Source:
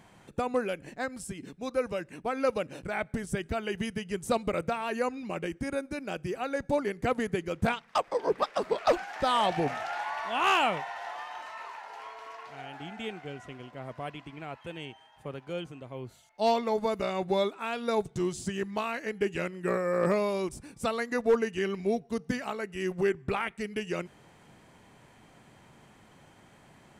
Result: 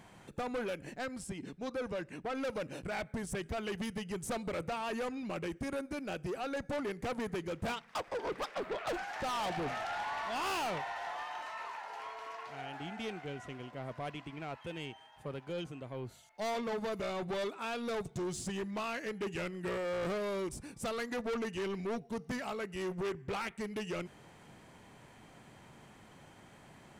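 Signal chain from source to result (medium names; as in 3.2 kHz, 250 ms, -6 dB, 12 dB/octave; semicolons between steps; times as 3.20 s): 8.54–8.94 s: high-order bell 7.2 kHz -9 dB; saturation -33 dBFS, distortion -5 dB; 1.12–2.35 s: treble shelf 10 kHz -10.5 dB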